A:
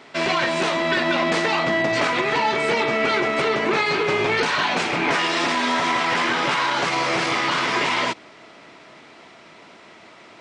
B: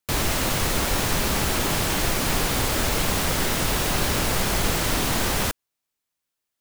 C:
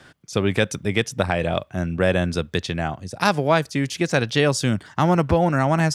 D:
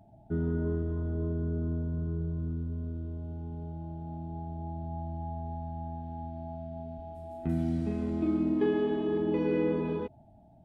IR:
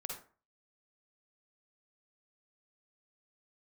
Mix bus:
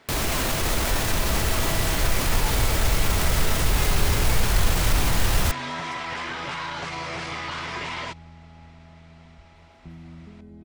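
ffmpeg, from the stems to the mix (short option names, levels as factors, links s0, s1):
-filter_complex "[0:a]volume=0.316[s0];[1:a]volume=1.26[s1];[2:a]volume=0.224[s2];[3:a]aecho=1:1:5.2:0.65,adelay=2400,volume=0.282[s3];[s0][s1]amix=inputs=2:normalize=0,alimiter=limit=0.158:level=0:latency=1:release=14,volume=1[s4];[s2][s3]amix=inputs=2:normalize=0,acompressor=threshold=0.00794:ratio=4,volume=1[s5];[s4][s5]amix=inputs=2:normalize=0,asubboost=boost=4:cutoff=120"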